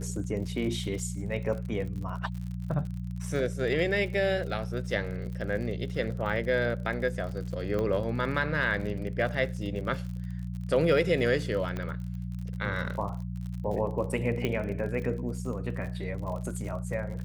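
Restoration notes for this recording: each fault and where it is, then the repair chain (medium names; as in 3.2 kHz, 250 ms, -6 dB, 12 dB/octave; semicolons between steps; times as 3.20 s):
crackle 49 per s -37 dBFS
hum 60 Hz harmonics 3 -35 dBFS
7.79 s: pop -20 dBFS
11.77 s: pop -21 dBFS
14.45 s: pop -16 dBFS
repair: de-click; de-hum 60 Hz, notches 3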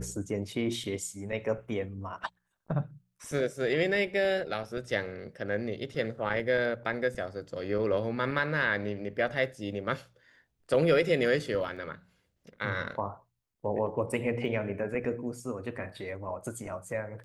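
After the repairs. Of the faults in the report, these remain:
11.77 s: pop
14.45 s: pop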